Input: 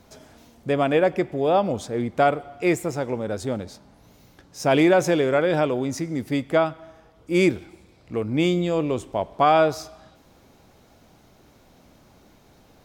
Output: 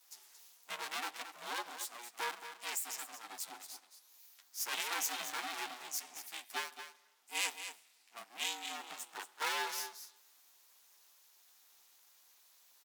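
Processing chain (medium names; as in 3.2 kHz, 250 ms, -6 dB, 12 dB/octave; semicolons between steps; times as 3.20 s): comb filter that takes the minimum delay 9.7 ms; steep high-pass 440 Hz 72 dB/octave; ring modulator 240 Hz; differentiator; on a send: delay 225 ms -10 dB; on the sum: trim +2.5 dB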